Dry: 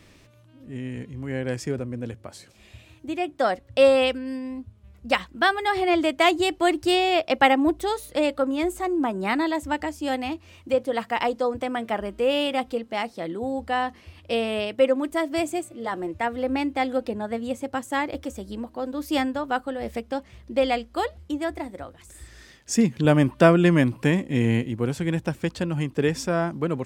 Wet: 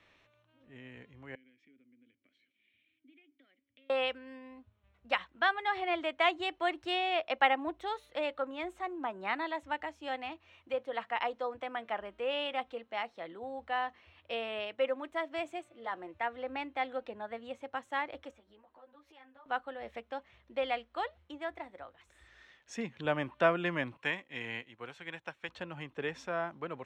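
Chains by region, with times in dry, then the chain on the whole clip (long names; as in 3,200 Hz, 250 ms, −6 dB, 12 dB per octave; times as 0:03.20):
0:01.35–0:03.90: downward compressor 8 to 1, threshold −33 dBFS + formant filter i
0:18.31–0:19.46: bass and treble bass −6 dB, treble −7 dB + downward compressor, threshold −40 dBFS + string-ensemble chorus
0:23.97–0:25.49: high-pass filter 59 Hz + tilt shelving filter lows −5.5 dB, about 720 Hz + expander for the loud parts, over −41 dBFS
whole clip: three-way crossover with the lows and the highs turned down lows −14 dB, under 550 Hz, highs −24 dB, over 4,400 Hz; notch filter 4,800 Hz, Q 5.7; level −7 dB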